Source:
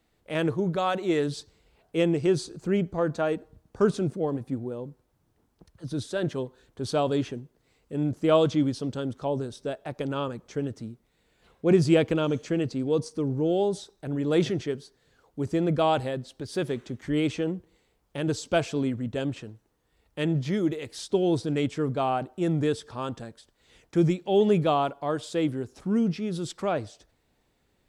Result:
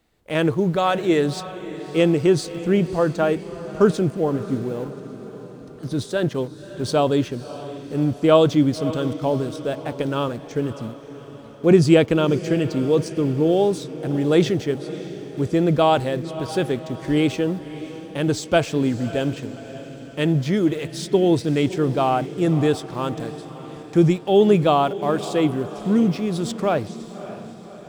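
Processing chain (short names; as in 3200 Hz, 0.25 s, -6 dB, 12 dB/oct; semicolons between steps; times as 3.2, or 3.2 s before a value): in parallel at -8 dB: sample gate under -37.5 dBFS; on the sum: diffused feedback echo 0.591 s, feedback 55%, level -14 dB; gain +3.5 dB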